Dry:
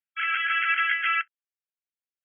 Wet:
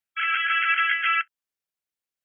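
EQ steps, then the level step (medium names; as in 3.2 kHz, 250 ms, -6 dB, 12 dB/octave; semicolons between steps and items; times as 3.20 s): dynamic bell 1.9 kHz, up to -3 dB, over -36 dBFS, Q 1.5; +4.0 dB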